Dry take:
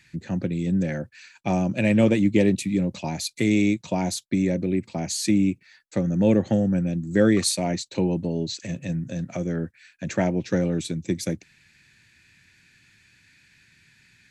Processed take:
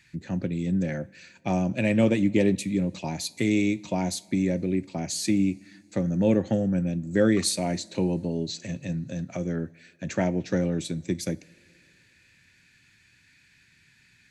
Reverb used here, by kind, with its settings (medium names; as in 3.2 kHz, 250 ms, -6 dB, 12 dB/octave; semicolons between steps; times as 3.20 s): two-slope reverb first 0.32 s, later 2.7 s, from -19 dB, DRR 15.5 dB; trim -2.5 dB